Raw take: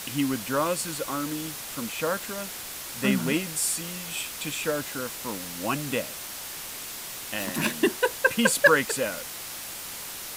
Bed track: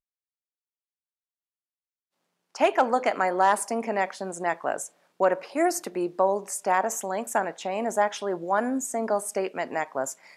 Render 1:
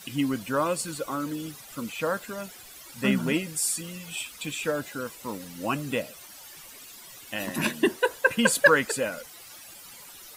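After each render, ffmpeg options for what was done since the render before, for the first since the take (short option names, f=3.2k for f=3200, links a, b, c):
-af "afftdn=nr=14:nf=-38"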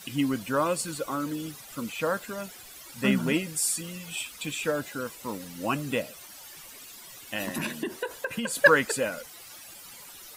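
-filter_complex "[0:a]asplit=3[a][b][c];[a]afade=t=out:st=7.44:d=0.02[d];[b]acompressor=threshold=-26dB:ratio=12:attack=3.2:release=140:knee=1:detection=peak,afade=t=in:st=7.44:d=0.02,afade=t=out:st=8.56:d=0.02[e];[c]afade=t=in:st=8.56:d=0.02[f];[d][e][f]amix=inputs=3:normalize=0"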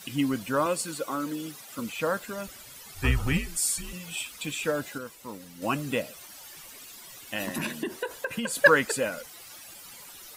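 -filter_complex "[0:a]asettb=1/sr,asplit=3[a][b][c];[a]atrim=end=0.664[d];[b]atrim=start=0.66:end=1.79,asetpts=PTS-STARTPTS,afade=t=in:d=0.004:c=qsin,afade=t=out:st=1.126:d=0.004:c=qsin,highpass=170[e];[c]atrim=start=1.786[f];[d][e]acrossfade=d=0.004:c1=hsin:c2=qsin[g];[g][f]acrossfade=d=0.004:c1=qsin:c2=hsin,asettb=1/sr,asplit=3[h][i][j];[h]atrim=end=2.474[k];[i]atrim=start=2.47:end=3.93,asetpts=PTS-STARTPTS,afade=t=in:d=0.004:c=qsin,afade=t=out:st=1.456:d=0.004:c=qsin,afreqshift=-140[l];[j]atrim=start=3.926[m];[k][l]acrossfade=d=0.004:c1=hsin:c2=qsin[n];[n][m]acrossfade=d=0.004:c1=qsin:c2=hsin,asplit=3[o][p][q];[o]atrim=end=4.982[r];[p]atrim=start=4.978:end=5.622,asetpts=PTS-STARTPTS,volume=-5.5dB[s];[q]atrim=start=5.618[t];[r][s]acrossfade=d=0.004:c1=hsin:c2=hsin[u];[u][t]acrossfade=d=0.004:c1=hsin:c2=hsin"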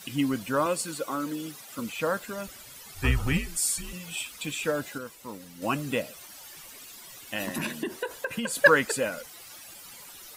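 -af anull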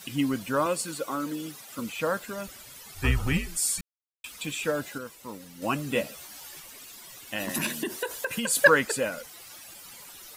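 -filter_complex "[0:a]asettb=1/sr,asplit=3[a][b][c];[a]atrim=end=5.944[d];[b]atrim=start=5.94:end=6.6,asetpts=PTS-STARTPTS,afade=t=in:d=0.004:c=qsin,afade=t=out:st=0.656:d=0.004:c=qsin,asplit=2[e][f];[f]adelay=14,volume=-2.5dB[g];[e][g]amix=inputs=2:normalize=0,atrim=end_sample=29106[h];[c]atrim=start=6.596[i];[d][h]acrossfade=d=0.004:c1=hsin:c2=qsin[j];[j][i]acrossfade=d=0.004:c1=qsin:c2=hsin,asettb=1/sr,asplit=3[k][l][m];[k]atrim=end=7.494[n];[l]atrim=start=7.49:end=8.65,asetpts=PTS-STARTPTS,afade=t=in:d=0.004:c=qsin,afade=t=out:st=1.156:d=0.004:c=qsin,highshelf=f=3.6k:g=8.5[o];[m]atrim=start=8.646[p];[n][o]acrossfade=d=0.004:c1=hsin:c2=qsin[q];[q][p]acrossfade=d=0.004:c1=qsin:c2=hsin,asplit=3[r][s][t];[r]atrim=end=3.81,asetpts=PTS-STARTPTS,afade=t=out:st=3.806:d=0.004:c=hsin[u];[s]atrim=start=3.81:end=4.24,asetpts=PTS-STARTPTS,volume=0[v];[t]atrim=start=4.24,asetpts=PTS-STARTPTS,afade=t=in:d=0.004:c=hsin[w];[u][v][w]concat=n=3:v=0:a=1"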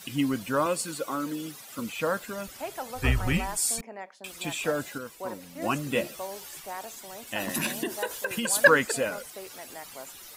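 -filter_complex "[1:a]volume=-15dB[a];[0:a][a]amix=inputs=2:normalize=0"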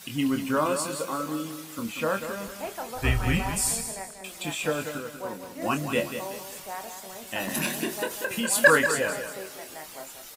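-filter_complex "[0:a]asplit=2[a][b];[b]adelay=26,volume=-7.5dB[c];[a][c]amix=inputs=2:normalize=0,asplit=2[d][e];[e]aecho=0:1:189|378|567|756:0.355|0.135|0.0512|0.0195[f];[d][f]amix=inputs=2:normalize=0"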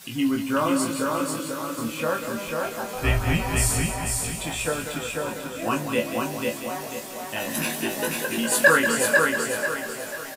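-filter_complex "[0:a]asplit=2[a][b];[b]adelay=18,volume=-5dB[c];[a][c]amix=inputs=2:normalize=0,aecho=1:1:493|986|1479|1972|2465:0.708|0.269|0.102|0.0388|0.0148"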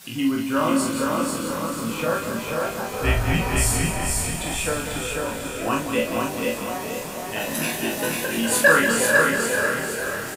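-filter_complex "[0:a]asplit=2[a][b];[b]adelay=44,volume=-6dB[c];[a][c]amix=inputs=2:normalize=0,asplit=8[d][e][f][g][h][i][j][k];[e]adelay=441,afreqshift=-34,volume=-10dB[l];[f]adelay=882,afreqshift=-68,volume=-14.4dB[m];[g]adelay=1323,afreqshift=-102,volume=-18.9dB[n];[h]adelay=1764,afreqshift=-136,volume=-23.3dB[o];[i]adelay=2205,afreqshift=-170,volume=-27.7dB[p];[j]adelay=2646,afreqshift=-204,volume=-32.2dB[q];[k]adelay=3087,afreqshift=-238,volume=-36.6dB[r];[d][l][m][n][o][p][q][r]amix=inputs=8:normalize=0"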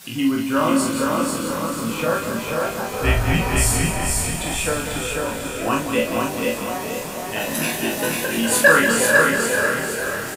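-af "volume=2.5dB,alimiter=limit=-2dB:level=0:latency=1"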